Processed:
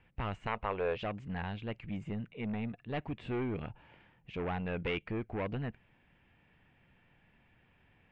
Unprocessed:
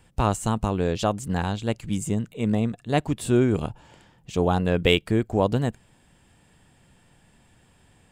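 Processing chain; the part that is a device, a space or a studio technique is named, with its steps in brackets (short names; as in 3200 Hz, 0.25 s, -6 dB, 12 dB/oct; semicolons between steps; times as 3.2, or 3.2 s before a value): overdriven synthesiser ladder filter (soft clip -21.5 dBFS, distortion -8 dB; ladder low-pass 2800 Hz, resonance 50%); 0.47–0.97 graphic EQ 125/250/500/1000/2000/4000/8000 Hz -7/-9/+9/+6/+4/+3/-4 dB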